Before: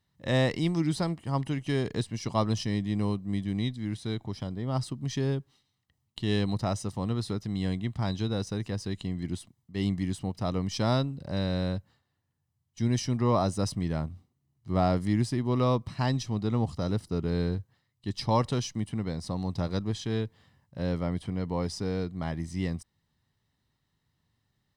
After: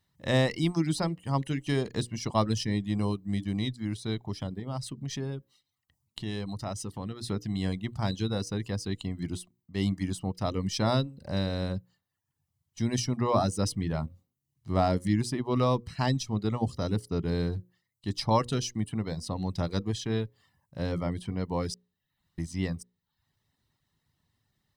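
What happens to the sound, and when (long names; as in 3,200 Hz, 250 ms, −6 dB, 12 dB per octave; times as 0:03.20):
0:04.59–0:07.24: downward compressor 2 to 1, threshold −35 dBFS
0:21.74–0:22.38: fill with room tone
whole clip: mains-hum notches 60/120/180/240/300/360/420/480/540 Hz; reverb reduction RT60 0.59 s; high-shelf EQ 8,300 Hz +4.5 dB; level +1.5 dB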